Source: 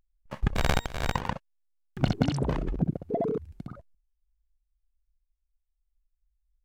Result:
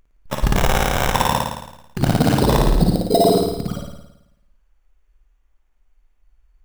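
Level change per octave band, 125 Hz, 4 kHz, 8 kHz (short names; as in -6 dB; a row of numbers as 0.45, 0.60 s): +10.0, +13.0, +16.5 dB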